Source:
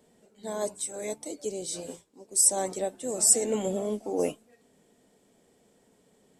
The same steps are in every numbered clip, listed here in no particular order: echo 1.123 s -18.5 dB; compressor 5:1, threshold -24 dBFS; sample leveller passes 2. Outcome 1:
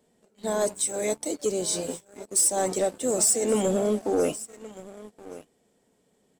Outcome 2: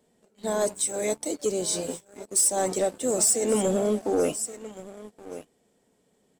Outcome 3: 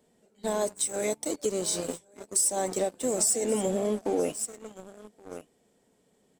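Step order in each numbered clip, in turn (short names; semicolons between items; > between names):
compressor > echo > sample leveller; echo > compressor > sample leveller; echo > sample leveller > compressor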